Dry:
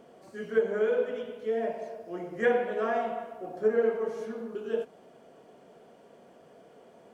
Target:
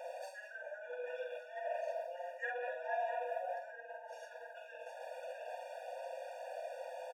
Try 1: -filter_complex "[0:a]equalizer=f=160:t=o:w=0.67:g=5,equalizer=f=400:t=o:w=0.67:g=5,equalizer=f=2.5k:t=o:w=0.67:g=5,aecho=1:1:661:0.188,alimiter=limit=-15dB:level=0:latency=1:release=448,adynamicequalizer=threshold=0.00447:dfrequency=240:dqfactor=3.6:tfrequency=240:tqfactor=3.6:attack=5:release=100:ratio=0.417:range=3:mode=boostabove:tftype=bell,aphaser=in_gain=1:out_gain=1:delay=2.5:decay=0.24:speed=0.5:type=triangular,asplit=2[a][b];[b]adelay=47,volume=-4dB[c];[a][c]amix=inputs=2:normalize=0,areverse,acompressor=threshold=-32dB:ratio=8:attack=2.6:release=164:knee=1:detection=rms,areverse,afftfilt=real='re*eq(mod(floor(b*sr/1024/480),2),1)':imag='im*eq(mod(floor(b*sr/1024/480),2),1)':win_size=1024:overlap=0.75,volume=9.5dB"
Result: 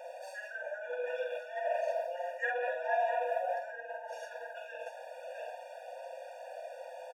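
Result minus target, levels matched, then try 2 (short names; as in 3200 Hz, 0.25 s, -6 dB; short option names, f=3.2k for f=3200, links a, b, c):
compressor: peak gain reduction -6.5 dB
-filter_complex "[0:a]equalizer=f=160:t=o:w=0.67:g=5,equalizer=f=400:t=o:w=0.67:g=5,equalizer=f=2.5k:t=o:w=0.67:g=5,aecho=1:1:661:0.188,alimiter=limit=-15dB:level=0:latency=1:release=448,adynamicequalizer=threshold=0.00447:dfrequency=240:dqfactor=3.6:tfrequency=240:tqfactor=3.6:attack=5:release=100:ratio=0.417:range=3:mode=boostabove:tftype=bell,aphaser=in_gain=1:out_gain=1:delay=2.5:decay=0.24:speed=0.5:type=triangular,asplit=2[a][b];[b]adelay=47,volume=-4dB[c];[a][c]amix=inputs=2:normalize=0,areverse,acompressor=threshold=-39.5dB:ratio=8:attack=2.6:release=164:knee=1:detection=rms,areverse,afftfilt=real='re*eq(mod(floor(b*sr/1024/480),2),1)':imag='im*eq(mod(floor(b*sr/1024/480),2),1)':win_size=1024:overlap=0.75,volume=9.5dB"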